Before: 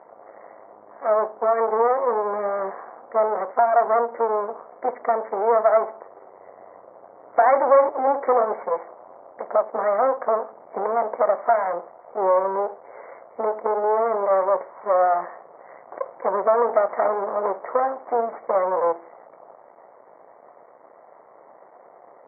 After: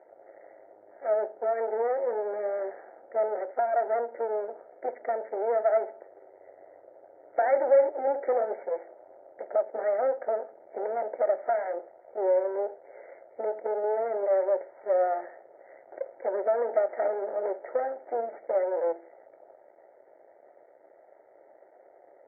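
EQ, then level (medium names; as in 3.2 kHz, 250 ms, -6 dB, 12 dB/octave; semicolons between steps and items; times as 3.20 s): cabinet simulation 110–2100 Hz, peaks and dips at 130 Hz -5 dB, 270 Hz -6 dB, 460 Hz -7 dB, 730 Hz -4 dB, 1.1 kHz -4 dB; static phaser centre 450 Hz, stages 4; 0.0 dB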